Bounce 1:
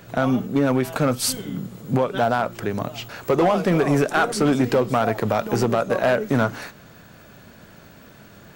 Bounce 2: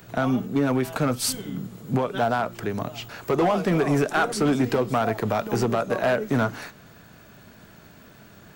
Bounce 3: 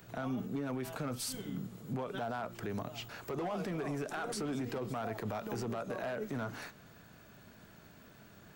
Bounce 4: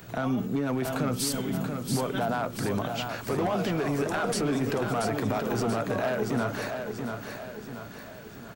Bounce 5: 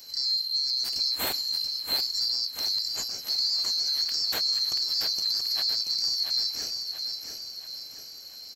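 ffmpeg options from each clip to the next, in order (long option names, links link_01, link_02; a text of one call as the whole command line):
ffmpeg -i in.wav -filter_complex "[0:a]bandreject=frequency=540:width=12,acrossover=split=390|990|7300[link_01][link_02][link_03][link_04];[link_04]acompressor=mode=upward:threshold=-53dB:ratio=2.5[link_05];[link_01][link_02][link_03][link_05]amix=inputs=4:normalize=0,volume=-2.5dB" out.wav
ffmpeg -i in.wav -af "alimiter=limit=-21.5dB:level=0:latency=1:release=48,volume=-8dB" out.wav
ffmpeg -i in.wav -af "aecho=1:1:682|1364|2046|2728|3410|4092:0.501|0.241|0.115|0.0554|0.0266|0.0128,volume=9dB" out.wav
ffmpeg -i in.wav -af "afftfilt=real='real(if(lt(b,736),b+184*(1-2*mod(floor(b/184),2)),b),0)':imag='imag(if(lt(b,736),b+184*(1-2*mod(floor(b/184),2)),b),0)':win_size=2048:overlap=0.75" -ar 48000 -c:a libvorbis -b:a 192k out.ogg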